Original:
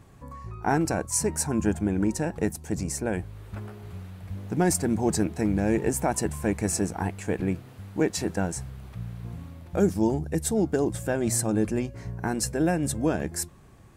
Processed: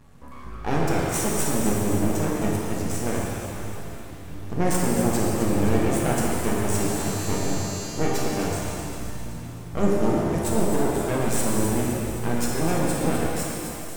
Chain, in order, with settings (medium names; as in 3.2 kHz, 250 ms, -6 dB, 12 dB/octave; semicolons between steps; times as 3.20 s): half-wave rectifier; 6.77–7.83 s: mains buzz 400 Hz, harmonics 19, -44 dBFS 0 dB/octave; on a send: feedback echo behind a high-pass 260 ms, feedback 56%, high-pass 2.2 kHz, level -9 dB; on the sum: pitch-shifted reverb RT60 2.5 s, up +7 st, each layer -8 dB, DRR -4 dB